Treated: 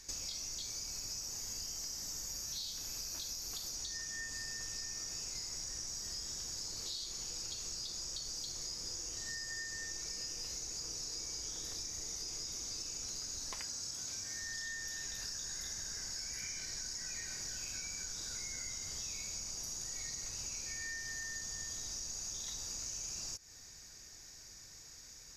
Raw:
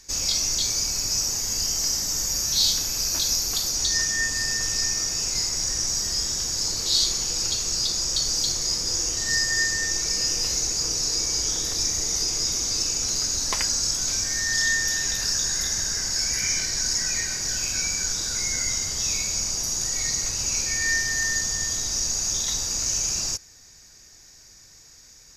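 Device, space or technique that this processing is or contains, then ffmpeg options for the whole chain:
serial compression, peaks first: -filter_complex "[0:a]acompressor=threshold=-32dB:ratio=6,acompressor=threshold=-42dB:ratio=1.5,asettb=1/sr,asplit=3[a][b][c];[a]atrim=end=13.594[d];[b]atrim=start=13.59:end=14.42,asetpts=PTS-STARTPTS,afade=t=in:d=0.004:c=qsin,afade=t=out:st=0.826:d=0.004:c=qsin,highpass=63[e];[c]atrim=start=14.416[f];[d][e]acrossfade=d=0.004:c1=hsin:c2=qsin[g];[g][f]acrossfade=d=0.004:c1=qsin:c2=hsin,volume=-4dB"

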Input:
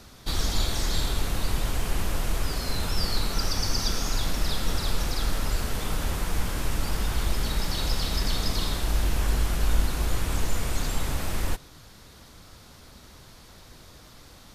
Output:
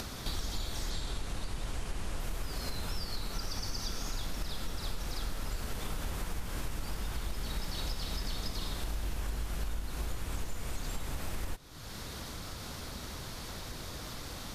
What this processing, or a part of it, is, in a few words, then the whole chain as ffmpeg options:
upward and downward compression: -filter_complex "[0:a]acompressor=mode=upward:threshold=-36dB:ratio=2.5,acompressor=threshold=-35dB:ratio=5,asettb=1/sr,asplit=3[a][b][c];[a]atrim=end=0.904[d];[b]atrim=start=0.9:end=2.2,asetpts=PTS-STARTPTS,afade=t=in:d=0.004:c=qsin,afade=t=out:st=1.296:d=0.004:c=qsin,lowpass=f=11k:w=0.5412,lowpass=f=11k:w=1.3066[e];[c]atrim=start=2.196[f];[d][e]acrossfade=d=0.004:c1=hsin:c2=qsin[g];[g][f]acrossfade=d=0.004:c1=qsin:c2=hsin,volume=2dB"

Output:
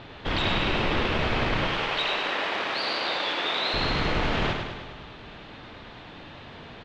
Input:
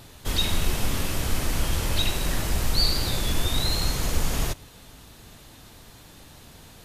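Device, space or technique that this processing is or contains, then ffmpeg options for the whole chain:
synthesiser wavefolder: -filter_complex "[0:a]aeval=exprs='0.0841*(abs(mod(val(0)/0.0841+3,4)-2)-1)':c=same,lowpass=f=3.3k:w=0.5412,lowpass=f=3.3k:w=1.3066,lowshelf=f=150:g=-11,asettb=1/sr,asplit=3[a][b][c];[a]atrim=end=1.674[d];[b]atrim=start=1.67:end=3.74,asetpts=PTS-STARTPTS,afade=t=in:d=0.004:c=qsin,afade=t=out:st=2.066:d=0.004:c=qsin,highpass=490[e];[c]atrim=start=3.736[f];[d][e]acrossfade=d=0.004:c1=hsin:c2=qsin[g];[g][f]acrossfade=d=0.004:c1=qsin:c2=hsin,aecho=1:1:103|206|309|412|515|618|721|824:0.531|0.313|0.185|0.109|0.0643|0.038|0.0224|0.0132,volume=7.5dB"

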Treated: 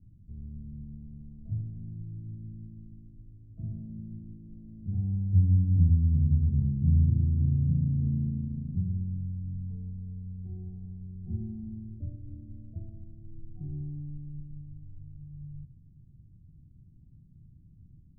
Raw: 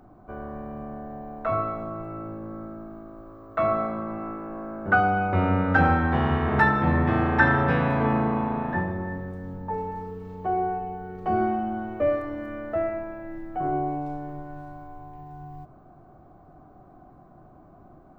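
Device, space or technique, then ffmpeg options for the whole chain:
the neighbour's flat through the wall: -filter_complex "[0:a]asplit=3[a][b][c];[a]afade=t=out:st=12.26:d=0.02[d];[b]adynamicequalizer=threshold=0.00891:dfrequency=980:dqfactor=0.74:tfrequency=980:tqfactor=0.74:attack=5:release=100:ratio=0.375:range=4:mode=boostabove:tftype=bell,afade=t=in:st=12.26:d=0.02,afade=t=out:st=13.64:d=0.02[e];[c]afade=t=in:st=13.64:d=0.02[f];[d][e][f]amix=inputs=3:normalize=0,lowpass=f=170:w=0.5412,lowpass=f=170:w=1.3066,equalizer=f=90:t=o:w=0.84:g=5"

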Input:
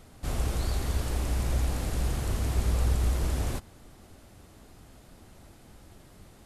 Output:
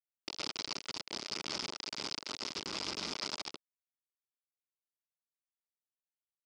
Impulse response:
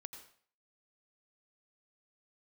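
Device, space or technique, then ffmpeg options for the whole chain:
hand-held game console: -af "acrusher=bits=3:mix=0:aa=0.000001,highpass=420,equalizer=f=510:t=q:w=4:g=-9,equalizer=f=730:t=q:w=4:g=-10,equalizer=f=1.1k:t=q:w=4:g=-3,equalizer=f=1.7k:t=q:w=4:g=-9,equalizer=f=5k:t=q:w=4:g=10,lowpass=f=5.7k:w=0.5412,lowpass=f=5.7k:w=1.3066,volume=-7dB"

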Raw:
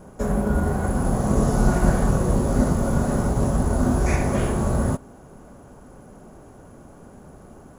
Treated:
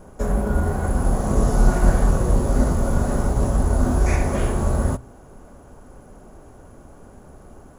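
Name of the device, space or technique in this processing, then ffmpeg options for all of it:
low shelf boost with a cut just above: -af "lowshelf=f=92:g=7.5,equalizer=f=170:t=o:w=1.2:g=-5,bandreject=f=60:t=h:w=6,bandreject=f=120:t=h:w=6"

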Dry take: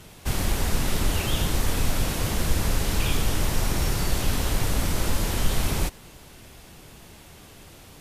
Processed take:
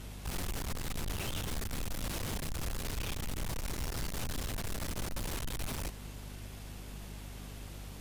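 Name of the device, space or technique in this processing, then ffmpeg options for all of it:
valve amplifier with mains hum: -af "aeval=exprs='(tanh(44.7*val(0)+0.3)-tanh(0.3))/44.7':c=same,aeval=exprs='val(0)+0.00708*(sin(2*PI*50*n/s)+sin(2*PI*2*50*n/s)/2+sin(2*PI*3*50*n/s)/3+sin(2*PI*4*50*n/s)/4+sin(2*PI*5*50*n/s)/5)':c=same,volume=-2dB"

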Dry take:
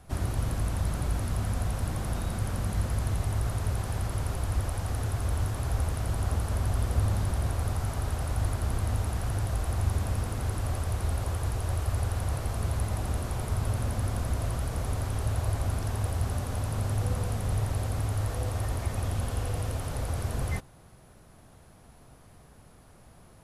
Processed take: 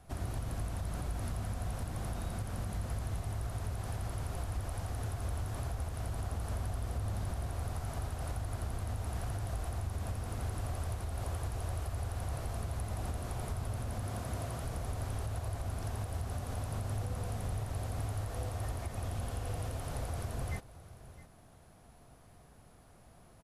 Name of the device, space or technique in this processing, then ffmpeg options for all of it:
clipper into limiter: -filter_complex "[0:a]asettb=1/sr,asplit=3[a][b][c];[a]atrim=end=14.034[d];[b]atrim=start=14.03:end=14.65,asetpts=PTS-STARTPTS,afade=t=in:d=0.004:c=qsin,afade=t=out:st=0.616:d=0.004:c=qsin,highpass=90[e];[c]atrim=start=14.646[f];[d][e]acrossfade=d=0.004:c1=hsin:c2=qsin[g];[g][f]acrossfade=d=0.004:c1=qsin:c2=hsin,equalizer=f=700:t=o:w=0.21:g=4.5,aecho=1:1:662:0.119,asoftclip=type=hard:threshold=-16dB,alimiter=limit=-23dB:level=0:latency=1:release=171,volume=-5dB"

